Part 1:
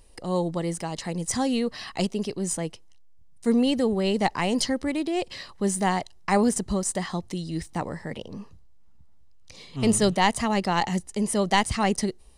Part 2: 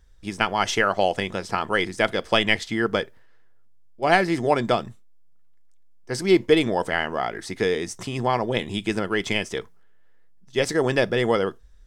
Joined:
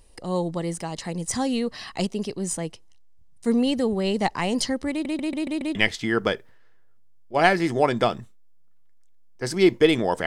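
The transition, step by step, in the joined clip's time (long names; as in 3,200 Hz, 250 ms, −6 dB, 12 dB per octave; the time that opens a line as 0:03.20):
part 1
0:04.91: stutter in place 0.14 s, 6 plays
0:05.75: continue with part 2 from 0:02.43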